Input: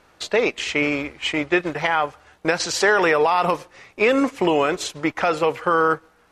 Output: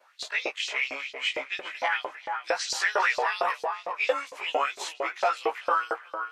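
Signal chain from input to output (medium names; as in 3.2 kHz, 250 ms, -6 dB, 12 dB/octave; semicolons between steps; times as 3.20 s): short-time spectra conjugated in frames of 43 ms; tape echo 402 ms, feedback 29%, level -6 dB, low-pass 2.1 kHz; LFO high-pass saw up 4.4 Hz 520–5100 Hz; trim -5 dB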